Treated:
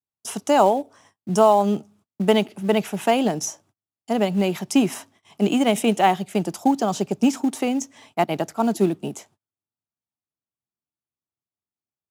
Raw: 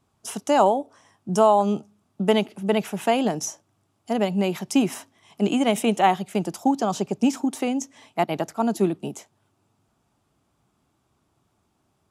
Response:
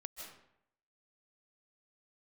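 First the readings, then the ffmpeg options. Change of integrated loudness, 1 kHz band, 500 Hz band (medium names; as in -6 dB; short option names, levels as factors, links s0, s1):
+1.5 dB, +1.0 dB, +2.0 dB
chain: -filter_complex "[0:a]agate=range=0.02:threshold=0.00178:ratio=16:detection=peak,highpass=50,adynamicequalizer=threshold=0.0158:dfrequency=1100:dqfactor=1.8:tfrequency=1100:tqfactor=1.8:attack=5:release=100:ratio=0.375:range=3.5:mode=cutabove:tftype=bell,asplit=2[s0][s1];[s1]acrusher=bits=3:mode=log:mix=0:aa=0.000001,volume=0.251[s2];[s0][s2]amix=inputs=2:normalize=0"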